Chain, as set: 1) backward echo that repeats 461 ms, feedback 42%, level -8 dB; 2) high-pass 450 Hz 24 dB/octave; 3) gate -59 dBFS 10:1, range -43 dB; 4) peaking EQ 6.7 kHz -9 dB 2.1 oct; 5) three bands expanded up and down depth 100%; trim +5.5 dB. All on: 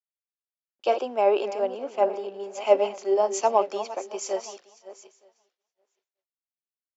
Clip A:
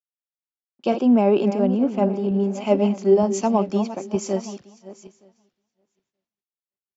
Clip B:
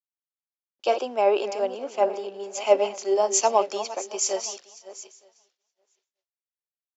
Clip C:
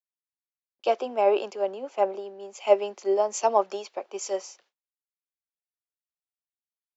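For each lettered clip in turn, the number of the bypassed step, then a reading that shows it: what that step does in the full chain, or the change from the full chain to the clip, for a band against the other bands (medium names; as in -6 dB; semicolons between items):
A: 2, 250 Hz band +19.5 dB; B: 4, 4 kHz band +5.5 dB; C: 1, momentary loudness spread change +1 LU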